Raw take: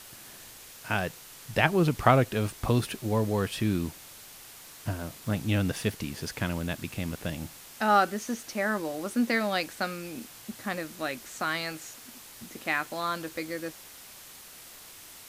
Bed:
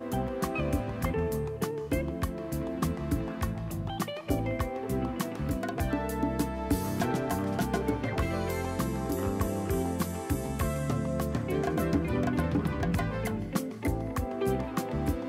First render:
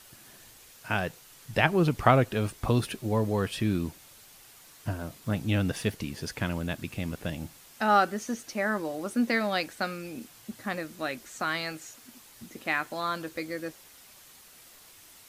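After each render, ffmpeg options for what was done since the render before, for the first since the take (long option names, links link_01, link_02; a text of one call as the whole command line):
ffmpeg -i in.wav -af "afftdn=noise_reduction=6:noise_floor=-48" out.wav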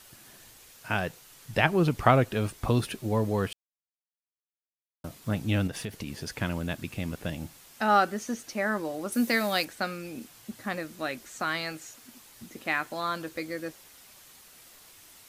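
ffmpeg -i in.wav -filter_complex "[0:a]asettb=1/sr,asplit=3[link_01][link_02][link_03];[link_01]atrim=end=5.674[link_04];[link_02]atrim=start=5.67:end=6.37,asetpts=PTS-STARTPTS,afade=type=in:duration=0.004:curve=qsin,afade=type=out:start_time=0.696:duration=0.004:curve=qsin,acompressor=threshold=-30dB:ratio=10:attack=3.2:release=140:knee=1:detection=peak[link_05];[link_03]atrim=start=6.366[link_06];[link_04][link_05]acrossfade=duration=0.004:curve1=hsin:curve2=qsin[link_07];[link_07][link_06]acrossfade=duration=0.004:curve1=qsin:curve2=hsin,asettb=1/sr,asplit=3[link_08][link_09][link_10];[link_08]atrim=end=9.124[link_11];[link_09]atrim=start=9.12:end=9.65,asetpts=PTS-STARTPTS,afade=type=in:duration=0.004:curve=qsin,afade=type=out:start_time=0.526:duration=0.004:curve=qsin,aemphasis=mode=production:type=50kf[link_12];[link_10]atrim=start=9.646[link_13];[link_11][link_12]acrossfade=duration=0.004:curve1=hsin:curve2=qsin[link_14];[link_14][link_13]acrossfade=duration=0.004:curve1=qsin:curve2=hsin,asplit=3[link_15][link_16][link_17];[link_15]atrim=end=3.53,asetpts=PTS-STARTPTS,afade=type=out:start_time=3.526:duration=0.004:curve=hsin[link_18];[link_16]atrim=start=3.53:end=5.04,asetpts=PTS-STARTPTS,volume=0[link_19];[link_17]atrim=start=5.04,asetpts=PTS-STARTPTS,afade=type=in:duration=0.004:curve=hsin[link_20];[link_18][link_19][link_20]concat=n=3:v=0:a=1" out.wav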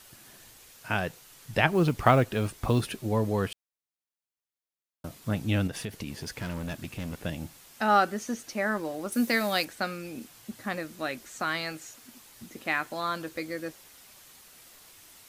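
ffmpeg -i in.wav -filter_complex "[0:a]asettb=1/sr,asplit=3[link_01][link_02][link_03];[link_01]atrim=end=1.704[link_04];[link_02]atrim=start=1.7:end=2.98,asetpts=PTS-STARTPTS,afade=type=in:duration=0.004:curve=qsin,afade=type=out:start_time=1.276:duration=0.004:curve=qsin,acrusher=bits=8:mode=log:mix=0:aa=0.000001[link_05];[link_03]atrim=start=2.976[link_06];[link_04][link_05]acrossfade=duration=0.004:curve1=hsin:curve2=qsin[link_07];[link_07][link_06]acrossfade=duration=0.004:curve1=qsin:curve2=hsin,asettb=1/sr,asplit=3[link_08][link_09][link_10];[link_08]atrim=end=6.104[link_11];[link_09]atrim=start=6.1:end=7.23,asetpts=PTS-STARTPTS,afade=type=in:duration=0.004:curve=qsin,afade=type=out:start_time=1.126:duration=0.004:curve=qsin,asoftclip=type=hard:threshold=-30.5dB[link_12];[link_10]atrim=start=7.226[link_13];[link_11][link_12]acrossfade=duration=0.004:curve1=hsin:curve2=qsin[link_14];[link_14][link_13]acrossfade=duration=0.004:curve1=qsin:curve2=hsin,asettb=1/sr,asplit=3[link_15][link_16][link_17];[link_15]atrim=end=8.714[link_18];[link_16]atrim=start=8.71:end=9.46,asetpts=PTS-STARTPTS,afade=type=in:duration=0.004:curve=qsin,afade=type=out:start_time=0.746:duration=0.004:curve=qsin,aeval=exprs='sgn(val(0))*max(abs(val(0))-0.00168,0)':channel_layout=same[link_19];[link_17]atrim=start=9.456[link_20];[link_18][link_19]acrossfade=duration=0.004:curve1=hsin:curve2=qsin[link_21];[link_21][link_20]acrossfade=duration=0.004:curve1=qsin:curve2=hsin" out.wav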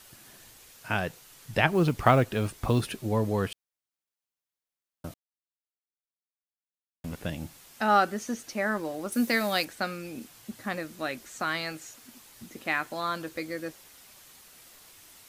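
ffmpeg -i in.wav -filter_complex "[0:a]asplit=3[link_01][link_02][link_03];[link_01]atrim=end=5.14,asetpts=PTS-STARTPTS,afade=type=out:start_time=5.136:duration=0.004:curve=hsin[link_04];[link_02]atrim=start=5.14:end=7.04,asetpts=PTS-STARTPTS,volume=0[link_05];[link_03]atrim=start=7.04,asetpts=PTS-STARTPTS,afade=type=in:duration=0.004:curve=hsin[link_06];[link_04][link_05][link_06]concat=n=3:v=0:a=1" out.wav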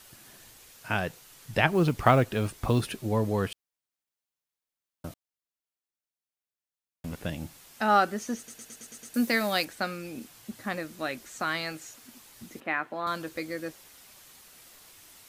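ffmpeg -i in.wav -filter_complex "[0:a]asettb=1/sr,asplit=3[link_01][link_02][link_03];[link_01]atrim=end=12.604[link_04];[link_02]atrim=start=12.6:end=13.07,asetpts=PTS-STARTPTS,afade=type=in:duration=0.004:curve=qsin,afade=type=out:start_time=0.466:duration=0.004:curve=qsin,acrossover=split=150 2700:gain=0.178 1 0.112[link_05][link_06][link_07];[link_05][link_06][link_07]amix=inputs=3:normalize=0[link_08];[link_03]atrim=start=13.066[link_09];[link_04][link_08]acrossfade=duration=0.004:curve1=hsin:curve2=qsin[link_10];[link_10][link_09]acrossfade=duration=0.004:curve1=qsin:curve2=hsin,asplit=8[link_11][link_12][link_13][link_14][link_15][link_16][link_17][link_18];[link_11]atrim=end=8.482[link_19];[link_12]atrim=start=8.368:end=8.482[link_20];[link_13]atrim=start=8.368:end=8.482[link_21];[link_14]atrim=start=8.368:end=8.482[link_22];[link_15]atrim=start=8.368:end=8.482[link_23];[link_16]atrim=start=8.368:end=8.482[link_24];[link_17]atrim=start=8.368:end=8.482[link_25];[link_18]atrim=start=9.138[link_26];[link_19][link_20]acrossfade=duration=0.004:curve1=hsin:curve2=hsin[link_27];[link_27][link_21]acrossfade=duration=0.004:curve1=hsin:curve2=hsin[link_28];[link_28][link_22]acrossfade=duration=0.004:curve1=hsin:curve2=hsin[link_29];[link_29][link_23]acrossfade=duration=0.004:curve1=hsin:curve2=hsin[link_30];[link_30][link_24]acrossfade=duration=0.004:curve1=hsin:curve2=hsin[link_31];[link_31][link_25]acrossfade=duration=0.004:curve1=hsin:curve2=hsin[link_32];[link_32][link_26]acrossfade=duration=0.004:curve1=hsin:curve2=hsin" out.wav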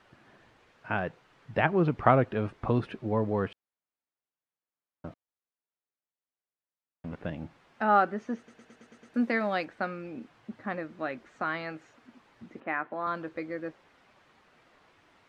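ffmpeg -i in.wav -af "lowpass=1800,lowshelf=frequency=77:gain=-11" out.wav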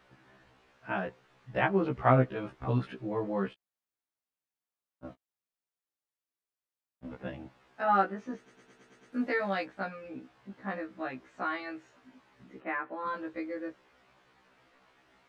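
ffmpeg -i in.wav -af "afftfilt=real='re*1.73*eq(mod(b,3),0)':imag='im*1.73*eq(mod(b,3),0)':win_size=2048:overlap=0.75" out.wav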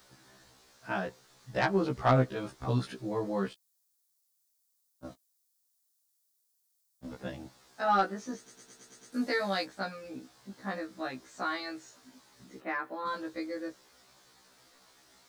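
ffmpeg -i in.wav -af "asoftclip=type=tanh:threshold=-13dB,aexciter=amount=4.4:drive=8.1:freq=3900" out.wav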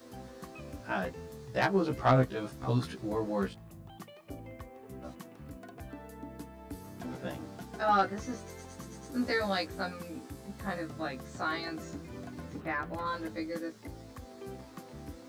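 ffmpeg -i in.wav -i bed.wav -filter_complex "[1:a]volume=-15.5dB[link_01];[0:a][link_01]amix=inputs=2:normalize=0" out.wav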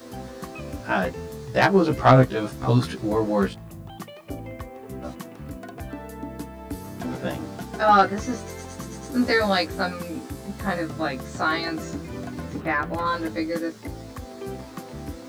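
ffmpeg -i in.wav -af "volume=10dB" out.wav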